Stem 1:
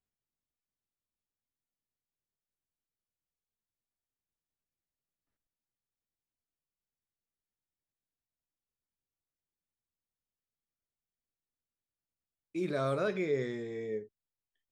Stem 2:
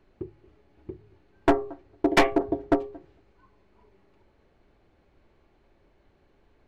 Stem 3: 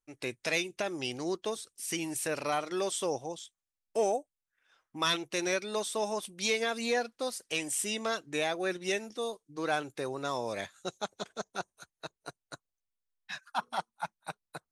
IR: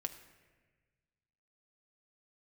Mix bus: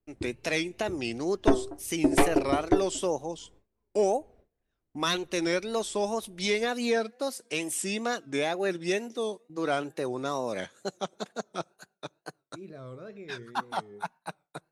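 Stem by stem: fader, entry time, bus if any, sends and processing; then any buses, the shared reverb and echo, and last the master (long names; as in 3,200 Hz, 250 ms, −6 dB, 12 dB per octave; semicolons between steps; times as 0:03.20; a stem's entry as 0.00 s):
−16.0 dB, 0.00 s, no send, no processing
−6.5 dB, 0.00 s, no send, no processing
−0.5 dB, 0.00 s, send −19 dB, high-pass filter 170 Hz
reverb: on, RT60 1.4 s, pre-delay 5 ms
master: noise gate with hold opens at −54 dBFS; low-shelf EQ 400 Hz +9 dB; tape wow and flutter 120 cents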